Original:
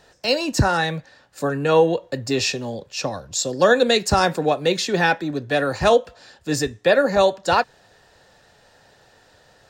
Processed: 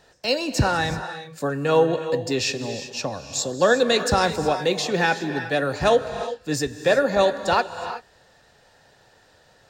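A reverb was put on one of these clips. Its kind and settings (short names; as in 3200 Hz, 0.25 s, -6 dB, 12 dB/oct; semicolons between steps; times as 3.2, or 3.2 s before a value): non-linear reverb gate 0.4 s rising, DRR 9 dB; gain -2.5 dB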